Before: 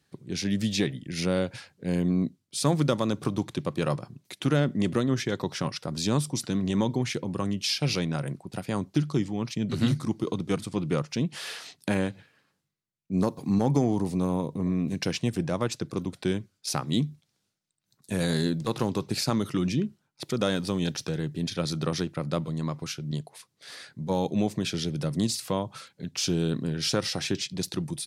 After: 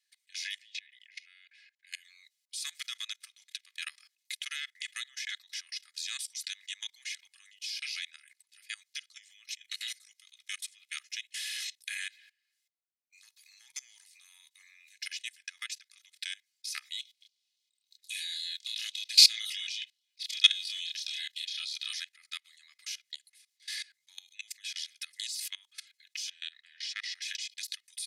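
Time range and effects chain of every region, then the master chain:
0.59–1.87 s: compression 8:1, threshold -34 dBFS + band-pass filter 2.1 kHz, Q 1.3
9.22–12.08 s: high-pass 900 Hz + treble shelf 8.7 kHz +4.5 dB + band-stop 4.7 kHz, Q 13
16.99–21.93 s: peaking EQ 3.5 kHz +11 dB 1.3 oct + LFO notch saw down 3.7 Hz 730–2100 Hz + doubling 28 ms -2.5 dB
26.30–27.22 s: low-pass 4.9 kHz + transient shaper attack -11 dB, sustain -5 dB + small resonant body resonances 430/1900 Hz, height 10 dB, ringing for 20 ms
whole clip: elliptic high-pass 1.9 kHz, stop band 70 dB; comb 2.4 ms, depth 61%; level held to a coarse grid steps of 22 dB; trim +6.5 dB

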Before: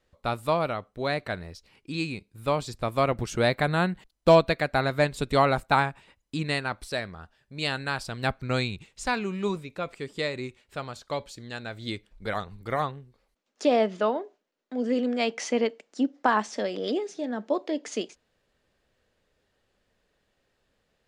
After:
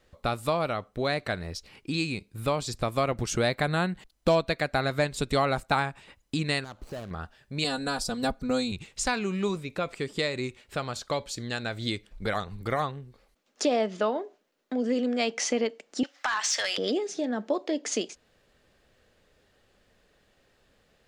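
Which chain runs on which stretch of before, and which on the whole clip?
6.64–7.11 s: median filter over 25 samples + compression 3:1, threshold -44 dBFS
7.64–8.72 s: peaking EQ 2.2 kHz -12.5 dB 1.4 oct + comb 4.1 ms, depth 90%
16.03–16.78 s: high-pass 1.4 kHz + compression 4:1, threshold -37 dBFS + overdrive pedal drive 20 dB, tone 6.8 kHz, clips at -16.5 dBFS
whole clip: band-stop 950 Hz, Q 22; dynamic bell 6.5 kHz, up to +5 dB, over -50 dBFS, Q 0.85; compression 2:1, threshold -38 dBFS; trim +7.5 dB

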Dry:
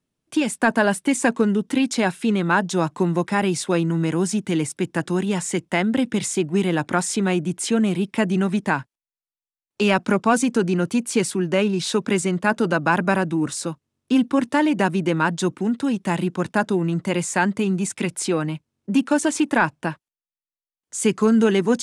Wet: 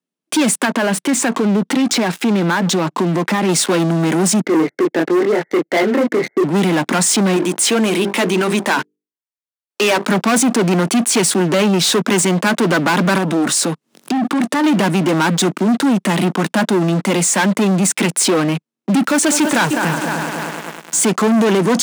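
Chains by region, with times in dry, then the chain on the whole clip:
0.65–3.49 s: distance through air 54 m + compression 4:1, threshold -23 dBFS + loudspeaker Doppler distortion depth 0.15 ms
4.41–6.44 s: brick-wall FIR low-pass 2.2 kHz + static phaser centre 460 Hz, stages 4 + doubling 25 ms -4 dB
7.36–10.09 s: peaking EQ 170 Hz -12.5 dB 1.2 oct + hum notches 50/100/150/200/250/300/350/400/450 Hz
13.18–14.64 s: upward compressor, threshold -27 dBFS + transformer saturation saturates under 1.4 kHz
19.04–21.05 s: resonant low shelf 160 Hz +10.5 dB, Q 1.5 + short-mantissa float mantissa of 2-bit + multi-head delay 102 ms, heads second and third, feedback 59%, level -16.5 dB
whole clip: waveshaping leveller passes 5; peak limiter -14.5 dBFS; steep high-pass 170 Hz; trim +4 dB

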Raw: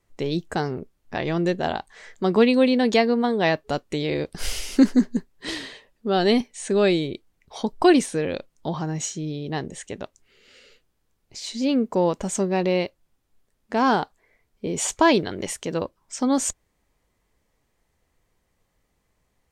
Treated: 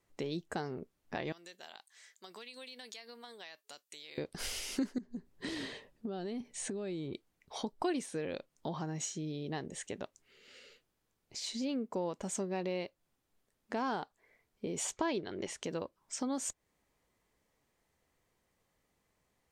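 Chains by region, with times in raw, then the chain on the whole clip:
1.32–4.18 s: differentiator + compression, threshold -40 dBFS
4.98–7.13 s: bass shelf 450 Hz +11 dB + compression 10:1, threshold -26 dBFS
14.92–15.63 s: low-pass 6.4 kHz + peaking EQ 370 Hz +5 dB 0.29 oct
whole clip: bass shelf 73 Hz -12 dB; compression 2.5:1, threshold -33 dBFS; trim -4.5 dB

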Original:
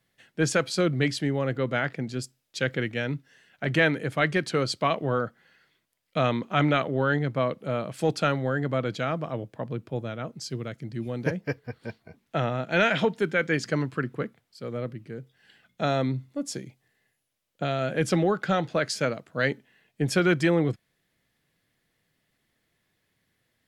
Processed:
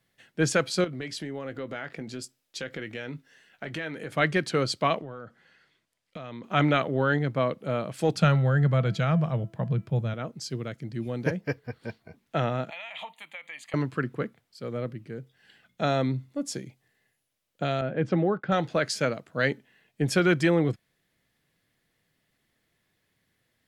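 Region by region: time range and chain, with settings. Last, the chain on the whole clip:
0.84–4.13 s: peaking EQ 120 Hz -5.5 dB 1.4 oct + compression 4:1, threshold -32 dBFS + doubling 19 ms -12 dB
4.99–6.44 s: low-pass 9.6 kHz + compression 12:1, threshold -35 dBFS
8.15–10.14 s: resonant low shelf 220 Hz +6 dB, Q 3 + de-hum 332.5 Hz, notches 9
12.70–13.74 s: high-pass 900 Hz + compression 12:1, threshold -31 dBFS + static phaser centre 1.5 kHz, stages 6
17.81–18.52 s: expander -34 dBFS + high-pass 48 Hz + tape spacing loss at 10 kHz 35 dB
whole clip: none

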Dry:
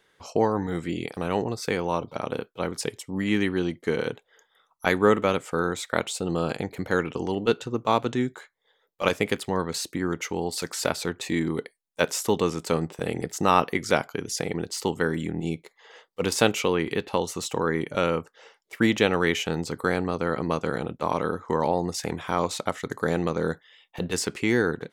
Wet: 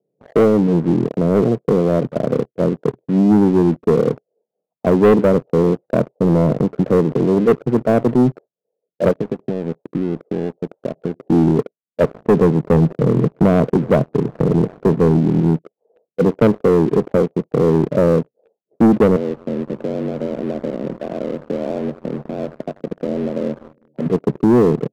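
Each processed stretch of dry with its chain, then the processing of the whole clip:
5.88–6.60 s: bass shelf 75 Hz +5.5 dB + upward compressor, threshold -30 dBFS + loudspeaker Doppler distortion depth 0.32 ms
9.11–11.26 s: compression, threshold -30 dBFS + peaking EQ 140 Hz -3.5 dB 0.21 oct
12.14–15.20 s: median filter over 15 samples + bass shelf 94 Hz +9 dB + repeats whose band climbs or falls 187 ms, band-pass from 5.7 kHz, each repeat -0.7 oct, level -9.5 dB
19.16–24.06 s: compression 2:1, threshold -39 dBFS + frequency shift +58 Hz + two-band feedback delay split 450 Hz, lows 201 ms, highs 86 ms, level -12.5 dB
whole clip: Chebyshev band-pass 130–670 Hz, order 4; bass shelf 180 Hz +8.5 dB; waveshaping leveller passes 3; trim +2 dB

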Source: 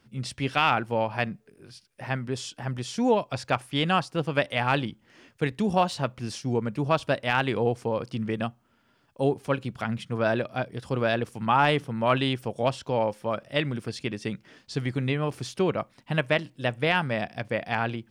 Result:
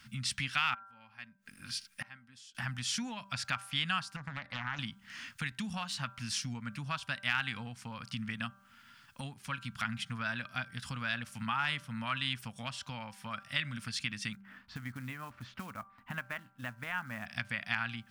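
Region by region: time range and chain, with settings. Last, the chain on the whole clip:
0.74–2.55 s: comb 3.7 ms, depth 35% + inverted gate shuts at -30 dBFS, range -28 dB
4.16–4.79 s: boxcar filter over 15 samples + compression 12:1, threshold -28 dBFS + loudspeaker Doppler distortion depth 0.77 ms
14.33–17.26 s: low-pass 1.2 kHz + peaking EQ 150 Hz -12 dB 0.55 oct + short-mantissa float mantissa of 4-bit
whole clip: de-hum 196.1 Hz, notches 8; compression 3:1, threshold -41 dBFS; FFT filter 240 Hz 0 dB, 380 Hz -24 dB, 1.4 kHz +9 dB; trim +1.5 dB

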